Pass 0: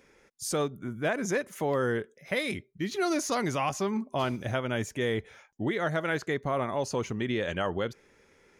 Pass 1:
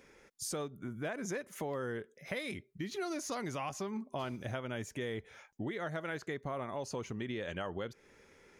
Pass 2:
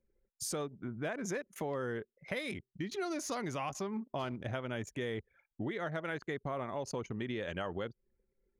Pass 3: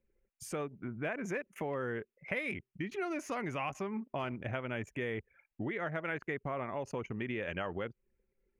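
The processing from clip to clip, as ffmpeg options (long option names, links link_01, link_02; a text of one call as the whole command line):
ffmpeg -i in.wav -af "acompressor=threshold=-40dB:ratio=2.5" out.wav
ffmpeg -i in.wav -af "anlmdn=0.0158,volume=1dB" out.wav
ffmpeg -i in.wav -af "highshelf=frequency=3200:width_type=q:width=3:gain=-7" out.wav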